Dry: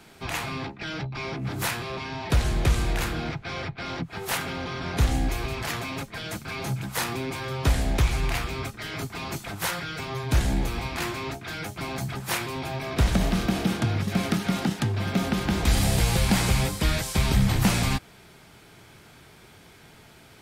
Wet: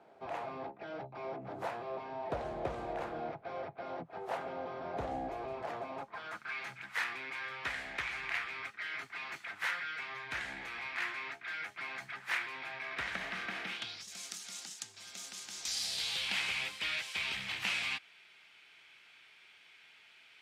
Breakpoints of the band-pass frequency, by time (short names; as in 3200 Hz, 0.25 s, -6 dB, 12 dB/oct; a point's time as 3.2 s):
band-pass, Q 2.4
5.89 s 640 Hz
6.57 s 1900 Hz
13.64 s 1900 Hz
14.09 s 6900 Hz
15.51 s 6900 Hz
16.4 s 2600 Hz